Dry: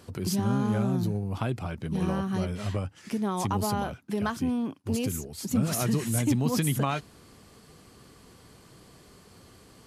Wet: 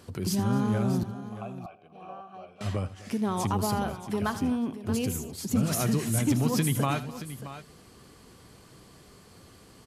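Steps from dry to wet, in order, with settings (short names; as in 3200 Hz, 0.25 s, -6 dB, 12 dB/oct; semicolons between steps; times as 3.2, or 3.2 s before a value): 1.03–2.61 vowel filter a; on a send: tapped delay 80/255/627 ms -15/-20/-13.5 dB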